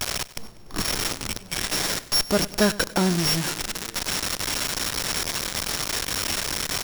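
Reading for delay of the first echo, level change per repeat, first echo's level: 97 ms, -5.5 dB, -19.0 dB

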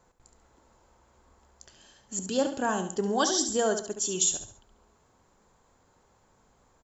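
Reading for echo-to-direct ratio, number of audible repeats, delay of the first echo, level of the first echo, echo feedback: -8.5 dB, 3, 70 ms, -9.0 dB, 36%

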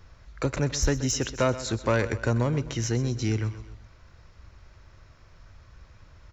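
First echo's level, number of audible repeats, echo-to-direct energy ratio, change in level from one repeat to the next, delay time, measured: -14.5 dB, 3, -13.5 dB, -6.0 dB, 128 ms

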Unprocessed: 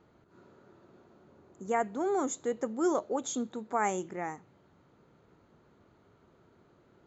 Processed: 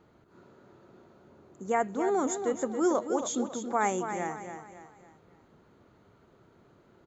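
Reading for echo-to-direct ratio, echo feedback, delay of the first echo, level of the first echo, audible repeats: -7.5 dB, 40%, 276 ms, -8.5 dB, 4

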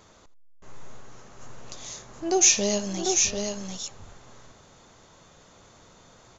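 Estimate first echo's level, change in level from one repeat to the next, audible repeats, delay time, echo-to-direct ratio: -18.0 dB, no regular repeats, 3, 82 ms, -4.0 dB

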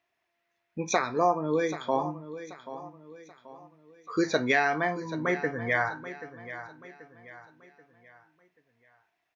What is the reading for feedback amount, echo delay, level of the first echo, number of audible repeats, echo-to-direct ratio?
40%, 783 ms, -13.5 dB, 3, -13.0 dB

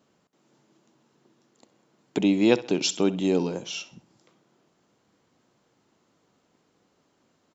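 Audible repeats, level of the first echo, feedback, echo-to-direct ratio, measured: 2, -17.0 dB, 34%, -16.5 dB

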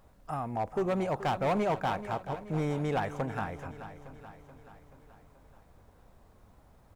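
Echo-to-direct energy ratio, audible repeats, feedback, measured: -11.5 dB, 5, 57%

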